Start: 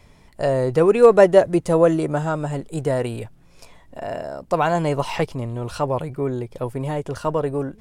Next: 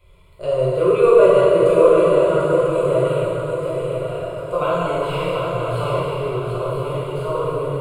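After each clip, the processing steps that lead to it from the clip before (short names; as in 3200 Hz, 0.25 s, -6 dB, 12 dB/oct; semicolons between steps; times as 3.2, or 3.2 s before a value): fixed phaser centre 1200 Hz, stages 8; swung echo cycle 0.99 s, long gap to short 3:1, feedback 41%, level -5.5 dB; plate-style reverb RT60 2.7 s, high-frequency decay 0.75×, DRR -9.5 dB; gain -6.5 dB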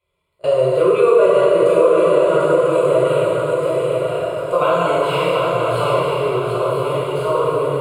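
gate with hold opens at -20 dBFS; HPF 270 Hz 6 dB/oct; compressor 2.5:1, threshold -18 dBFS, peak gain reduction 7 dB; gain +6.5 dB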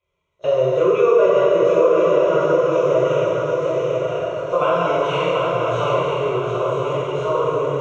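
nonlinear frequency compression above 3100 Hz 1.5:1; LPF 6200 Hz 12 dB/oct; gain -2 dB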